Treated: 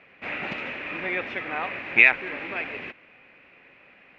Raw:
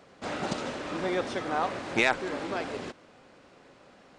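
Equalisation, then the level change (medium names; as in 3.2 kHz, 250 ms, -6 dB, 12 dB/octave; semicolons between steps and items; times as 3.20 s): resonant low-pass 2.5 kHz, resonance Q 7.3; peaking EQ 1.9 kHz +7 dB 0.48 oct; -4.5 dB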